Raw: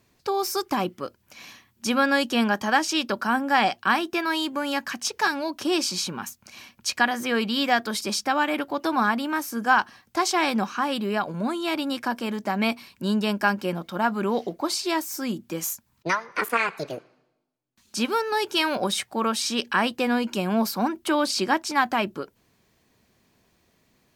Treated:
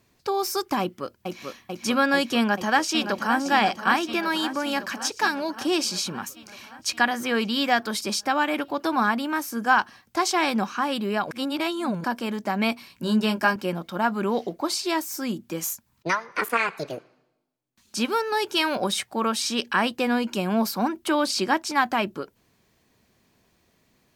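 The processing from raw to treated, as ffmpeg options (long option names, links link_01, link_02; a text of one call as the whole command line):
ffmpeg -i in.wav -filter_complex "[0:a]asplit=2[link_01][link_02];[link_02]afade=type=in:start_time=0.81:duration=0.01,afade=type=out:start_time=1.45:duration=0.01,aecho=0:1:440|880|1320|1760|2200|2640|3080|3520|3960|4400|4840|5280:0.630957|0.504766|0.403813|0.32305|0.25844|0.206752|0.165402|0.132321|0.105857|0.0846857|0.0677485|0.0541988[link_03];[link_01][link_03]amix=inputs=2:normalize=0,asplit=2[link_04][link_05];[link_05]afade=type=in:start_time=2.37:duration=0.01,afade=type=out:start_time=3.39:duration=0.01,aecho=0:1:570|1140|1710|2280|2850|3420|3990|4560|5130|5700:0.334965|0.234476|0.164133|0.114893|0.0804252|0.0562976|0.0394083|0.0275858|0.0193101|0.0135171[link_06];[link_04][link_06]amix=inputs=2:normalize=0,asettb=1/sr,asplit=3[link_07][link_08][link_09];[link_07]atrim=end=12.884[link_10];[link_08]atrim=start=12.88:end=13.56,asetpts=PTS-STARTPTS,afade=type=in:duration=0.004:curve=qsin,afade=type=out:start_time=0.676:duration=0.004:curve=qsin,asplit=2[link_11][link_12];[link_12]adelay=18,volume=-4.5dB[link_13];[link_11][link_13]amix=inputs=2:normalize=0,atrim=end_sample=29988[link_14];[link_09]atrim=start=13.556[link_15];[link_10][link_14]acrossfade=duration=0.004:curve1=hsin:curve2=qsin[link_16];[link_16][link_15]acrossfade=duration=0.004:curve1=qsin:curve2=hsin,asplit=3[link_17][link_18][link_19];[link_17]atrim=end=11.312[link_20];[link_18]atrim=start=11.308:end=12.042,asetpts=PTS-STARTPTS,areverse[link_21];[link_19]atrim=start=12.038[link_22];[link_20][link_21]acrossfade=duration=0.004:curve1=hsin:curve2=hsin[link_23];[link_23][link_22]acrossfade=duration=0.004:curve1=hsin:curve2=hsin" out.wav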